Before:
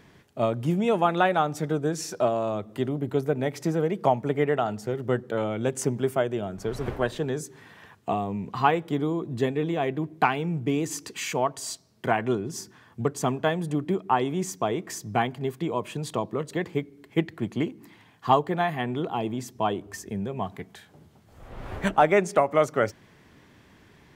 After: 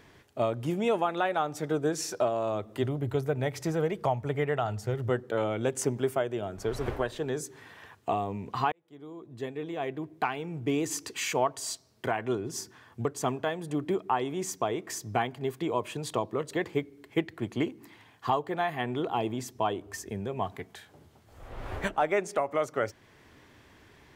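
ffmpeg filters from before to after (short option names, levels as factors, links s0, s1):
-filter_complex "[0:a]asplit=3[s0][s1][s2];[s0]afade=t=out:st=2.82:d=0.02[s3];[s1]asubboost=boost=7.5:cutoff=100,afade=t=in:st=2.82:d=0.02,afade=t=out:st=5.09:d=0.02[s4];[s2]afade=t=in:st=5.09:d=0.02[s5];[s3][s4][s5]amix=inputs=3:normalize=0,asplit=2[s6][s7];[s6]atrim=end=8.72,asetpts=PTS-STARTPTS,afade=t=out:st=8.716:d=0.004:c=hsin[s8];[s7]atrim=start=8.72,asetpts=PTS-STARTPTS,afade=t=in:d=2.19[s9];[s8][s9]concat=n=2:v=0:a=1,equalizer=f=180:w=1.8:g=-8,alimiter=limit=0.158:level=0:latency=1:release=404"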